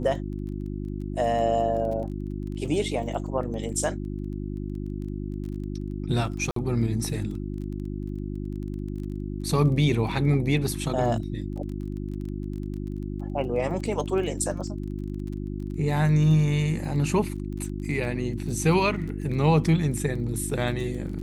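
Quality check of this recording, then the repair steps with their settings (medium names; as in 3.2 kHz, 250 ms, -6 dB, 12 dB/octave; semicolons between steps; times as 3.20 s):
crackle 20 per s -35 dBFS
hum 50 Hz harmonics 7 -32 dBFS
6.51–6.56 s: dropout 53 ms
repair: de-click; de-hum 50 Hz, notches 7; interpolate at 6.51 s, 53 ms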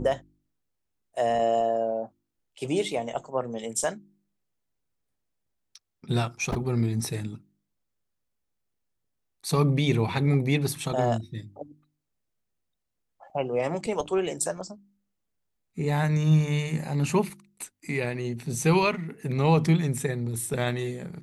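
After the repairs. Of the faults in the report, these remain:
nothing left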